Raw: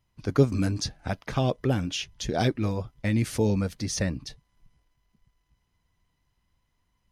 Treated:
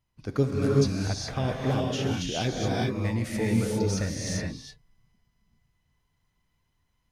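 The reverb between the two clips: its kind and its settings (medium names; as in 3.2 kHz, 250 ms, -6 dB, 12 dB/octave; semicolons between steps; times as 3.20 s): gated-style reverb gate 440 ms rising, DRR -3.5 dB; trim -5 dB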